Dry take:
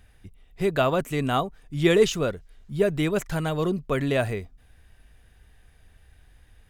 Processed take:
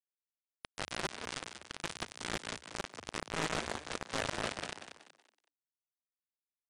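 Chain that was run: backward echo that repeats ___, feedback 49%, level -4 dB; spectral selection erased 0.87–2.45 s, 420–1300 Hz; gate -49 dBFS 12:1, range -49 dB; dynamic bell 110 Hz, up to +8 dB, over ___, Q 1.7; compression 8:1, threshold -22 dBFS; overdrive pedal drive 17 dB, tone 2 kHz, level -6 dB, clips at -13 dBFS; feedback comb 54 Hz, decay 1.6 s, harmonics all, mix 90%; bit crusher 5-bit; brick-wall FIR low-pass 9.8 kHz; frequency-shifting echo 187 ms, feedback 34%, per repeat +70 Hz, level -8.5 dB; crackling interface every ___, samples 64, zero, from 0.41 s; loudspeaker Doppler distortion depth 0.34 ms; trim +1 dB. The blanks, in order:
216 ms, -44 dBFS, 0.28 s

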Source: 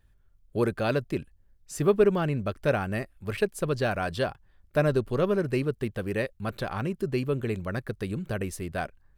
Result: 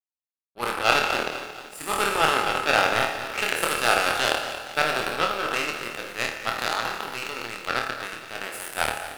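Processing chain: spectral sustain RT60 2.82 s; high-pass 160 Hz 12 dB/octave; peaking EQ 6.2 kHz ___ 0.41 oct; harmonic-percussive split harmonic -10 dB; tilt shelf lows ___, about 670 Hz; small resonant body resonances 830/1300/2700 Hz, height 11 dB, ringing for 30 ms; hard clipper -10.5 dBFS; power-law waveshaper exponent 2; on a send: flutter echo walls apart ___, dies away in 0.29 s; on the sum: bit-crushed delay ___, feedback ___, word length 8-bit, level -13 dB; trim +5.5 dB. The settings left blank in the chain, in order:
-13.5 dB, -9 dB, 4.4 m, 229 ms, 55%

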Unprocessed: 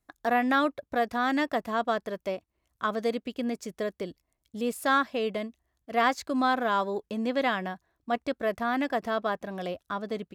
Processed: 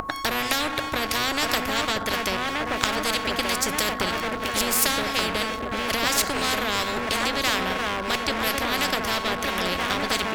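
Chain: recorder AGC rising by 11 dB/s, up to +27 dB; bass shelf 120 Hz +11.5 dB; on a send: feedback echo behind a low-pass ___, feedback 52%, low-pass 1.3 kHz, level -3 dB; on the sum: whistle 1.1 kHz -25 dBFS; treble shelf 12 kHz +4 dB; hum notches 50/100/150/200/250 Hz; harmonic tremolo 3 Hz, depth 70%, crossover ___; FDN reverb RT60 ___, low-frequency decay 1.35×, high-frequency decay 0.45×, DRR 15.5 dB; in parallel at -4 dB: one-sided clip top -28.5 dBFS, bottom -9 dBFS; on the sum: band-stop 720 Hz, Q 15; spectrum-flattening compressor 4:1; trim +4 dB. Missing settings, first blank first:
1176 ms, 720 Hz, 1.1 s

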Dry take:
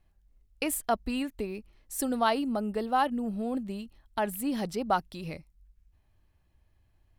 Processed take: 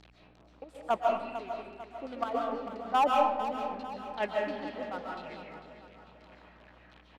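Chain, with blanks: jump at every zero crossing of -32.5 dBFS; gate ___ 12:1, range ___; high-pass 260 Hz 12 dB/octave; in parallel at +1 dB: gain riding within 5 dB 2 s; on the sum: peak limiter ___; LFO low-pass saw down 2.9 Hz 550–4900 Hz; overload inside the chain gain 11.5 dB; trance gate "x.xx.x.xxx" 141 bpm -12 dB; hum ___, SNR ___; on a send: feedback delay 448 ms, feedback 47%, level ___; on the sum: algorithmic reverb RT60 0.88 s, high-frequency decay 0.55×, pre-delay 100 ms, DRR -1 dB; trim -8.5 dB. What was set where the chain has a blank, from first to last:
-24 dBFS, -13 dB, -10 dBFS, 60 Hz, 23 dB, -11 dB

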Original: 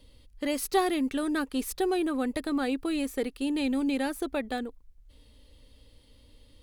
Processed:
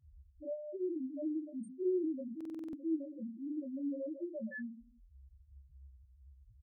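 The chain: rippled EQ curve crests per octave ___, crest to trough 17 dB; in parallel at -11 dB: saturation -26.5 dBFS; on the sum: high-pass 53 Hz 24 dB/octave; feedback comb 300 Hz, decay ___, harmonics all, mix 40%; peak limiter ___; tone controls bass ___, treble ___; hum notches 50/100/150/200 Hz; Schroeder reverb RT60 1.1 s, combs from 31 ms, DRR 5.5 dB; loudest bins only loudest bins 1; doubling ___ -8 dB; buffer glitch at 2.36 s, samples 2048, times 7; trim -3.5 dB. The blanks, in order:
1.3, 0.61 s, -26 dBFS, +12 dB, +4 dB, 22 ms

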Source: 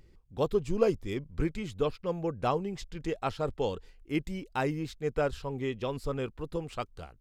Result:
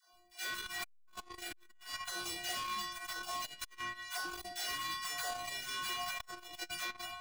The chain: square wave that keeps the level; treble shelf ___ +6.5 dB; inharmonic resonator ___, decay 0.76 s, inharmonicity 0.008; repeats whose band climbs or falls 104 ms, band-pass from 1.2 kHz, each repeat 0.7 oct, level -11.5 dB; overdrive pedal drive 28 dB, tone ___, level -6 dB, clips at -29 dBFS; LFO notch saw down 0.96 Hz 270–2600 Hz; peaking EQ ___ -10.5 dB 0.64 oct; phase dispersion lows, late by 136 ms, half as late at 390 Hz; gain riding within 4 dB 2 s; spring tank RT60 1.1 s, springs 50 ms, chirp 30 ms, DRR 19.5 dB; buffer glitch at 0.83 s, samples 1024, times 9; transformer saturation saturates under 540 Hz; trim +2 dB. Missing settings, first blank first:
2.6 kHz, 350 Hz, 4.3 kHz, 370 Hz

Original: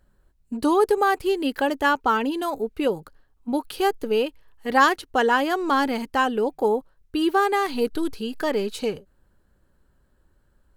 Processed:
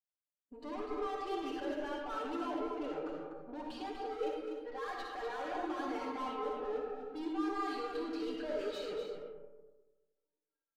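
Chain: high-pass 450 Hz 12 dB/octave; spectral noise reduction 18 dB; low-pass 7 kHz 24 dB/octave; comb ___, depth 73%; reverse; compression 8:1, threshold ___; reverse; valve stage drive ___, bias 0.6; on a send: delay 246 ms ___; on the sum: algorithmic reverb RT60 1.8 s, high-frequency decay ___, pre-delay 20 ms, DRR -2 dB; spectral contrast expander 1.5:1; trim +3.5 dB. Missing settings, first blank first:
6.7 ms, -29 dBFS, 45 dB, -5.5 dB, 0.35×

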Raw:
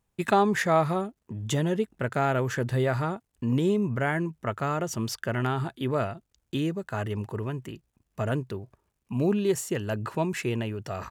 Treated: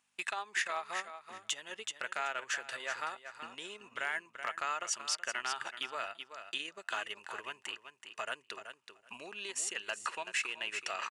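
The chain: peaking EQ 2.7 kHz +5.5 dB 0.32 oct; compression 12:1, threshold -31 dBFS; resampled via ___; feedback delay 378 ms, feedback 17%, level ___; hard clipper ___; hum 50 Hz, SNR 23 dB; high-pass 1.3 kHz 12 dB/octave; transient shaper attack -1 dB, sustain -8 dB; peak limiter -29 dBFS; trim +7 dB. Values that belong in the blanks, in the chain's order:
22.05 kHz, -9 dB, -23.5 dBFS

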